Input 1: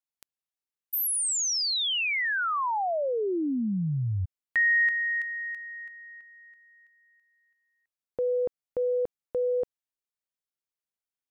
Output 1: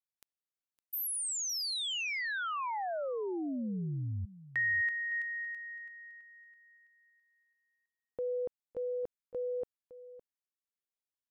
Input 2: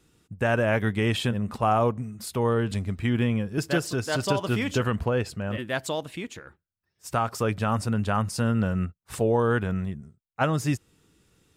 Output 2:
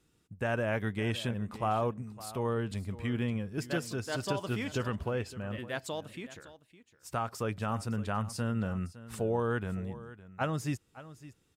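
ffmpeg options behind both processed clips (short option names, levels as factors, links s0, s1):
-af "aecho=1:1:561:0.15,volume=0.398"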